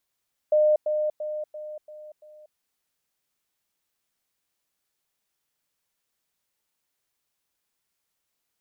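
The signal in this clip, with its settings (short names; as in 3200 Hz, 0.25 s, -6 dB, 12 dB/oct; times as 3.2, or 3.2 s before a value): level ladder 608 Hz -16 dBFS, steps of -6 dB, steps 6, 0.24 s 0.10 s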